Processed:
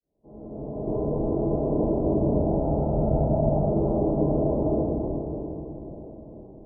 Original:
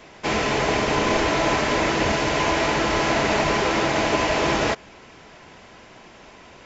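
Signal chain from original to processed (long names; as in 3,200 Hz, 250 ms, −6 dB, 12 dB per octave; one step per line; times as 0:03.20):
fade in at the beginning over 1.54 s
Gaussian smoothing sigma 16 samples
0:02.26–0:03.61: comb filter 1.4 ms, depth 57%
convolution reverb RT60 4.0 s, pre-delay 4 ms, DRR −8 dB
0:00.87–0:01.42: envelope flattener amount 70%
level −5.5 dB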